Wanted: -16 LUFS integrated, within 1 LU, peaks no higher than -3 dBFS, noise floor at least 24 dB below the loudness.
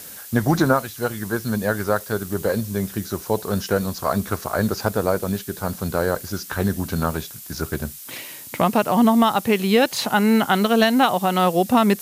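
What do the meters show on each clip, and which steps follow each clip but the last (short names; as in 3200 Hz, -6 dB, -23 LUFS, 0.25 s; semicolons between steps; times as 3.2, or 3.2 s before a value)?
noise floor -39 dBFS; noise floor target -45 dBFS; loudness -21.0 LUFS; peak -4.0 dBFS; loudness target -16.0 LUFS
-> noise print and reduce 6 dB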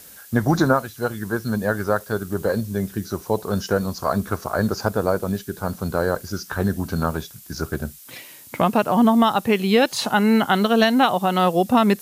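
noise floor -44 dBFS; noise floor target -46 dBFS
-> noise print and reduce 6 dB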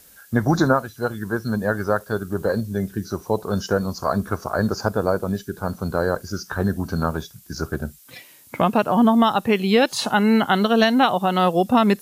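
noise floor -49 dBFS; loudness -21.5 LUFS; peak -4.0 dBFS; loudness target -16.0 LUFS
-> gain +5.5 dB; limiter -3 dBFS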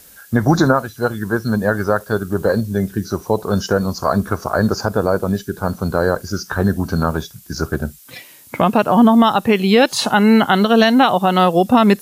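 loudness -16.5 LUFS; peak -3.0 dBFS; noise floor -44 dBFS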